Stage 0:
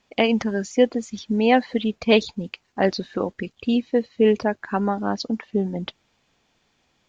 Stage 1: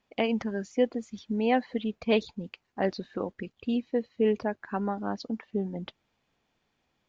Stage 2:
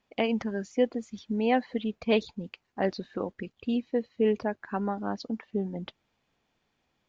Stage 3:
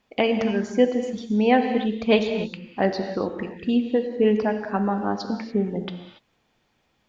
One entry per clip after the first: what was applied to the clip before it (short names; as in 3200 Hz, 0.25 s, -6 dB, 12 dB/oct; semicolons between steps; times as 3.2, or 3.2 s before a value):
high shelf 4400 Hz -9 dB; gain -7.5 dB
nothing audible
non-linear reverb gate 0.31 s flat, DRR 6 dB; gain +6 dB